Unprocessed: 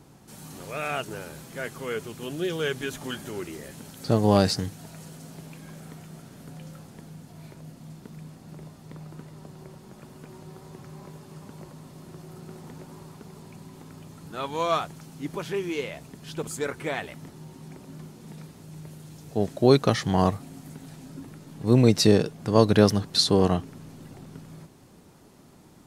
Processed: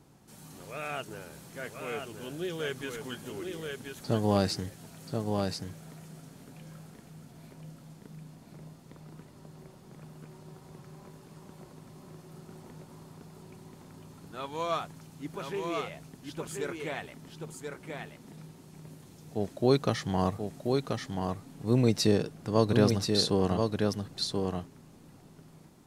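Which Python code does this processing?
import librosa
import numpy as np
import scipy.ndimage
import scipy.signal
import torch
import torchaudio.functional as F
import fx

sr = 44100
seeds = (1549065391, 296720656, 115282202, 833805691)

y = x + 10.0 ** (-4.5 / 20.0) * np.pad(x, (int(1032 * sr / 1000.0), 0))[:len(x)]
y = y * 10.0 ** (-6.5 / 20.0)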